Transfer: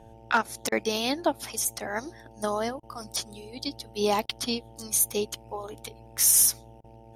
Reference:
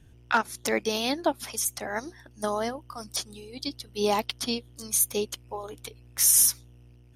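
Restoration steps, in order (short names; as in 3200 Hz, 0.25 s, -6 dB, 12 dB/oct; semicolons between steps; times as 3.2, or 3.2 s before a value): clip repair -12 dBFS; de-hum 112.6 Hz, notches 8; interpolate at 0.69/2.8/4.26/6.81, 29 ms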